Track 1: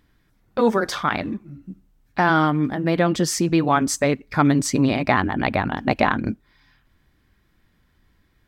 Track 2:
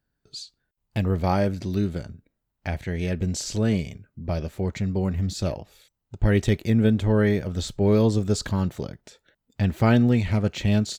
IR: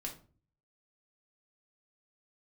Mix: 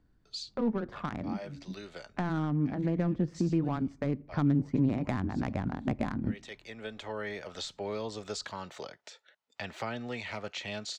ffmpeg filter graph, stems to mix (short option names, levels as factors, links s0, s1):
-filter_complex "[0:a]adynamicsmooth=sensitivity=0.5:basefreq=880,volume=0.531,asplit=3[s0][s1][s2];[s1]volume=0.126[s3];[1:a]highpass=110,acrossover=split=550 7200:gain=0.0631 1 0.0794[s4][s5][s6];[s4][s5][s6]amix=inputs=3:normalize=0,bandreject=f=1600:w=25,volume=1.19[s7];[s2]apad=whole_len=484356[s8];[s7][s8]sidechaincompress=threshold=0.0178:ratio=12:attack=9.1:release=986[s9];[2:a]atrim=start_sample=2205[s10];[s3][s10]afir=irnorm=-1:irlink=0[s11];[s0][s9][s11]amix=inputs=3:normalize=0,acrossover=split=270[s12][s13];[s13]acompressor=threshold=0.0158:ratio=5[s14];[s12][s14]amix=inputs=2:normalize=0"